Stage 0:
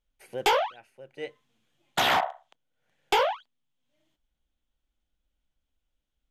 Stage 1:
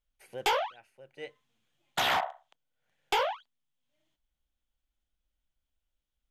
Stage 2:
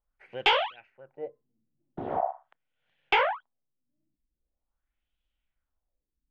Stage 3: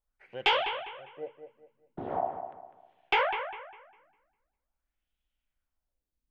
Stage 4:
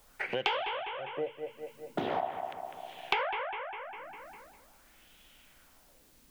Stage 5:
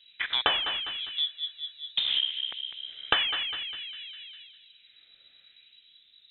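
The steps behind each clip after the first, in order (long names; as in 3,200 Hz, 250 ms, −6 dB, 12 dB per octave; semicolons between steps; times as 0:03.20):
parametric band 290 Hz −4 dB 1.9 octaves; level −3.5 dB
in parallel at −10.5 dB: dead-zone distortion −49 dBFS; on the sum: auto-filter low-pass sine 0.43 Hz 250–3,100 Hz
bucket-brigade delay 201 ms, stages 4,096, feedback 33%, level −9 dB; level −2.5 dB
multiband upward and downward compressor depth 100%
adaptive Wiener filter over 15 samples; voice inversion scrambler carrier 3,900 Hz; level +5.5 dB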